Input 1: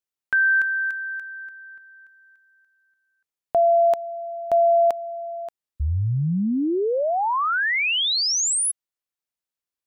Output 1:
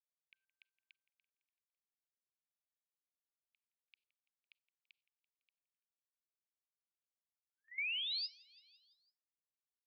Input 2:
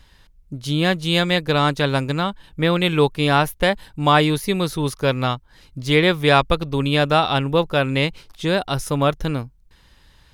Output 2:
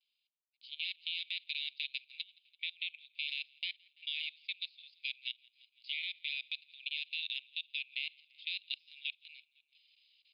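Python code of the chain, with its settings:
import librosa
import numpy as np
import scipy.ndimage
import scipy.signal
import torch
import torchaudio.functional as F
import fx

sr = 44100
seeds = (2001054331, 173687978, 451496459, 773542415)

p1 = scipy.signal.sosfilt(scipy.signal.butter(16, 2300.0, 'highpass', fs=sr, output='sos'), x)
p2 = fx.rider(p1, sr, range_db=4, speed_s=0.5)
p3 = p1 + (p2 * 10.0 ** (-3.0 / 20.0))
p4 = fx.rev_schroeder(p3, sr, rt60_s=0.4, comb_ms=32, drr_db=15.5)
p5 = fx.gate_hold(p4, sr, open_db=-48.0, close_db=-54.0, hold_ms=15.0, range_db=-13, attack_ms=0.65, release_ms=208.0)
p6 = fx.high_shelf(p5, sr, hz=3200.0, db=-9.0)
p7 = fx.level_steps(p6, sr, step_db=15)
p8 = scipy.signal.sosfilt(scipy.signal.cheby1(8, 1.0, 4900.0, 'lowpass', fs=sr, output='sos'), p7)
p9 = p8 + fx.echo_feedback(p8, sr, ms=168, feedback_pct=57, wet_db=-18.5, dry=0)
p10 = fx.transient(p9, sr, attack_db=3, sustain_db=-8)
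y = p10 * 10.0 ** (-8.5 / 20.0)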